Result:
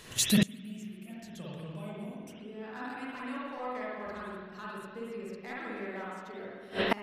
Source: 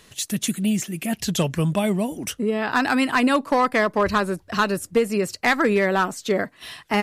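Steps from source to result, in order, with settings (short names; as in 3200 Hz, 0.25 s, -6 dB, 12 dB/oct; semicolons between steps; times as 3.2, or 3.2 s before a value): spring tank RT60 1.6 s, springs 48/56 ms, chirp 75 ms, DRR -7 dB; flipped gate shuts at -13 dBFS, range -27 dB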